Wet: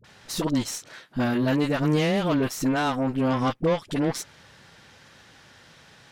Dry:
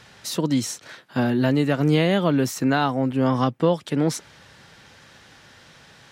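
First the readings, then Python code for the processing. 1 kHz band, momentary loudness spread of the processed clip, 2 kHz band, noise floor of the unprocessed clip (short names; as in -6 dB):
-2.5 dB, 11 LU, -2.0 dB, -51 dBFS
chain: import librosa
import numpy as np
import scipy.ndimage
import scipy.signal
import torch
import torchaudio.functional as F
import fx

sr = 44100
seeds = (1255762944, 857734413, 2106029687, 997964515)

y = 10.0 ** (-8.5 / 20.0) * np.tanh(x / 10.0 ** (-8.5 / 20.0))
y = fx.cheby_harmonics(y, sr, harmonics=(6,), levels_db=(-19,), full_scale_db=-10.0)
y = fx.dispersion(y, sr, late='highs', ms=44.0, hz=580.0)
y = y * librosa.db_to_amplitude(-2.5)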